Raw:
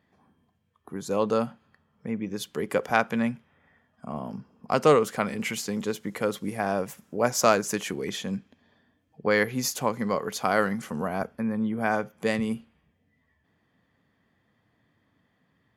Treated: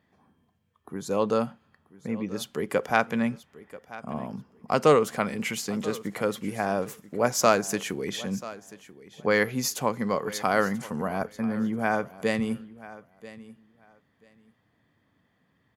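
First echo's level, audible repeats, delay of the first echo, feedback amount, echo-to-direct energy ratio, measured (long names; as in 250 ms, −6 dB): −18.0 dB, 2, 986 ms, 18%, −18.0 dB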